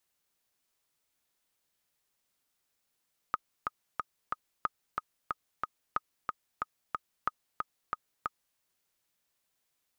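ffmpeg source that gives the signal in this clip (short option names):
-f lavfi -i "aevalsrc='pow(10,(-15-3.5*gte(mod(t,4*60/183),60/183))/20)*sin(2*PI*1250*mod(t,60/183))*exp(-6.91*mod(t,60/183)/0.03)':d=5.24:s=44100"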